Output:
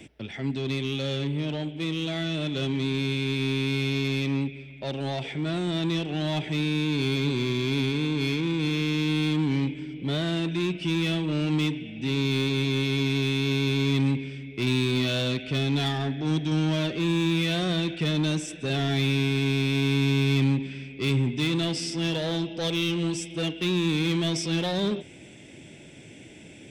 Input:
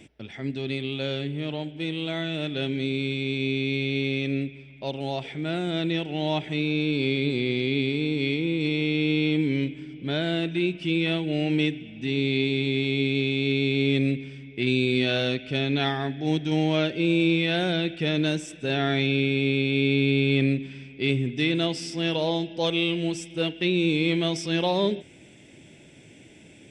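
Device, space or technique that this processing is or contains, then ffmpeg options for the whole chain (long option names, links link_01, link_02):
one-band saturation: -filter_complex "[0:a]acrossover=split=220|3700[link_01][link_02][link_03];[link_02]asoftclip=type=tanh:threshold=-32.5dB[link_04];[link_01][link_04][link_03]amix=inputs=3:normalize=0,volume=3.5dB"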